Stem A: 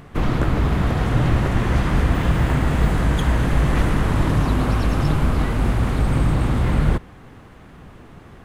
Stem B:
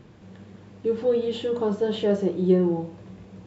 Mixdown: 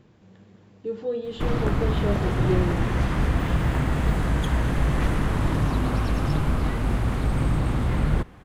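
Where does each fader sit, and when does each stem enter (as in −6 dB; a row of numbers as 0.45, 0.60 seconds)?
−4.5, −6.0 decibels; 1.25, 0.00 seconds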